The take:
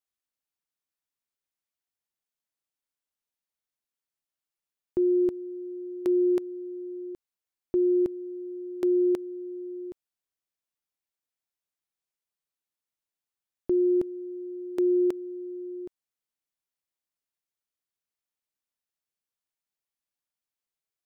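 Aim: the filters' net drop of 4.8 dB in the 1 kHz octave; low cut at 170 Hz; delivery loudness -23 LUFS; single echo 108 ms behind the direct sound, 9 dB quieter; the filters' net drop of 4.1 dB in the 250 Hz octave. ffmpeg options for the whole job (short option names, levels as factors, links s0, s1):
-af "highpass=170,equalizer=f=250:t=o:g=-7,equalizer=f=1000:t=o:g=-6,aecho=1:1:108:0.355,volume=3.16"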